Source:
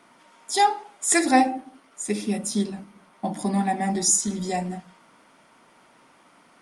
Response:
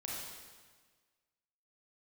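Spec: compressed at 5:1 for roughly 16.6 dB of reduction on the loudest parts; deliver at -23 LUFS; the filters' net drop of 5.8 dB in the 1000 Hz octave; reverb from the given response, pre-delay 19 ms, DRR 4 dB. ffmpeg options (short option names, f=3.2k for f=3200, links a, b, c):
-filter_complex "[0:a]equalizer=f=1k:t=o:g=-8.5,acompressor=threshold=-34dB:ratio=5,asplit=2[a][b];[1:a]atrim=start_sample=2205,adelay=19[c];[b][c]afir=irnorm=-1:irlink=0,volume=-4.5dB[d];[a][d]amix=inputs=2:normalize=0,volume=12.5dB"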